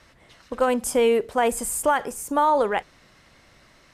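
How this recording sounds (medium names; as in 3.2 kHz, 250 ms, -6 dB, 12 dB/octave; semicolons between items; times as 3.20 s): noise floor -56 dBFS; spectral tilt -2.5 dB/octave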